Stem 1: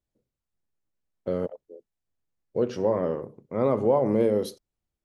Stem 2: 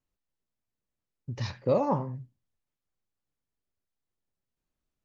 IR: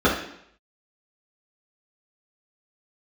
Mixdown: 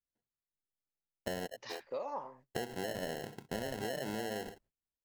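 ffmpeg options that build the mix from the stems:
-filter_complex "[0:a]alimiter=limit=-19.5dB:level=0:latency=1:release=275,acrusher=samples=37:mix=1:aa=0.000001,volume=1.5dB[a];[1:a]highpass=630,adelay=250,volume=-5dB[b];[a][b]amix=inputs=2:normalize=0,agate=range=-19dB:threshold=-59dB:ratio=16:detection=peak,acompressor=threshold=-35dB:ratio=10"

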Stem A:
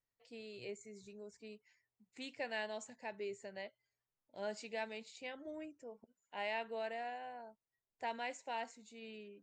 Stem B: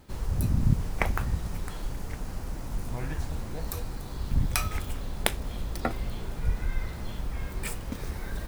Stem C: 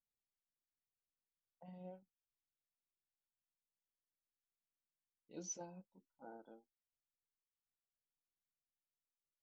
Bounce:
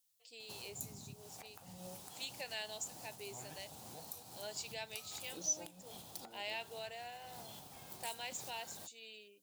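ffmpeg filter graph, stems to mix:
-filter_complex "[0:a]equalizer=f=230:t=o:w=0.83:g=-12,volume=-5dB,asplit=2[a][b];[1:a]equalizer=f=770:t=o:w=0.64:g=12.5,acompressor=threshold=-31dB:ratio=6,adelay=400,volume=-14.5dB[c];[2:a]volume=1dB[d];[b]apad=whole_len=391476[e];[c][e]sidechaincompress=threshold=-49dB:ratio=8:attack=36:release=274[f];[f][d]amix=inputs=2:normalize=0,highpass=f=110:w=0.5412,highpass=f=110:w=1.3066,alimiter=level_in=15.5dB:limit=-24dB:level=0:latency=1:release=246,volume=-15.5dB,volume=0dB[g];[a][g]amix=inputs=2:normalize=0,aexciter=amount=3.7:drive=6.8:freq=2.8k"

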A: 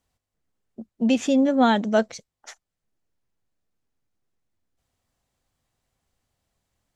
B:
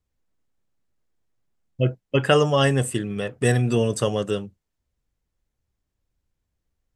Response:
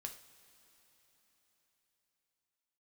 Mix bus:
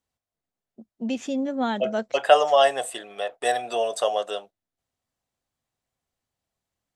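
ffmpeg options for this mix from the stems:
-filter_complex "[0:a]volume=-7dB[a];[1:a]agate=range=-13dB:threshold=-35dB:ratio=16:detection=peak,highpass=f=680:t=q:w=7,equalizer=f=3.7k:t=o:w=0.39:g=9,volume=-4dB[b];[a][b]amix=inputs=2:normalize=0,lowshelf=f=71:g=-9.5"

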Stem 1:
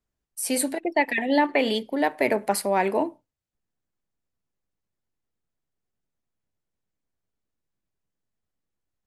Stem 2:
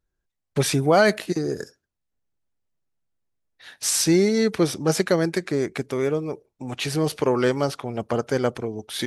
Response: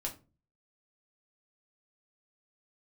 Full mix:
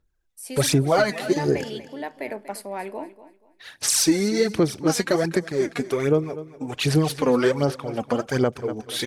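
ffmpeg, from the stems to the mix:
-filter_complex "[0:a]volume=-9.5dB,asplit=2[a][b];[b]volume=-15dB[c];[1:a]aphaser=in_gain=1:out_gain=1:delay=4.2:decay=0.63:speed=1.3:type=sinusoidal,volume=0dB,asplit=2[d][e];[e]volume=-17dB[f];[c][f]amix=inputs=2:normalize=0,aecho=0:1:240|480|720|960:1|0.26|0.0676|0.0176[g];[a][d][g]amix=inputs=3:normalize=0,alimiter=limit=-9dB:level=0:latency=1:release=333"

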